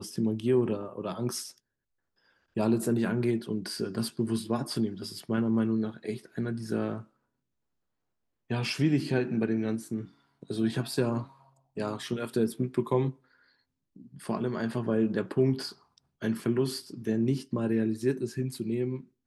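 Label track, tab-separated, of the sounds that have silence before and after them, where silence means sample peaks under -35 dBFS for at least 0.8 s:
2.570000	7.000000	sound
8.500000	13.110000	sound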